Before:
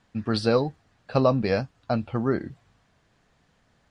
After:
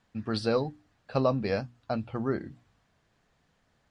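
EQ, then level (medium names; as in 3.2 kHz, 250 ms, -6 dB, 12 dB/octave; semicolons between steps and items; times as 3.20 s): hum notches 60/120/180/240/300 Hz; -5.0 dB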